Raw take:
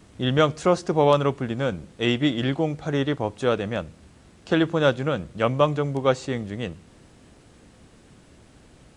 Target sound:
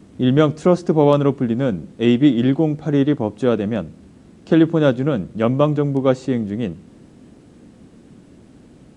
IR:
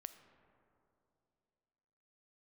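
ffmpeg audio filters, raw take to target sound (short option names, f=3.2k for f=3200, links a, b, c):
-af "equalizer=f=240:w=0.62:g=13,volume=-2.5dB"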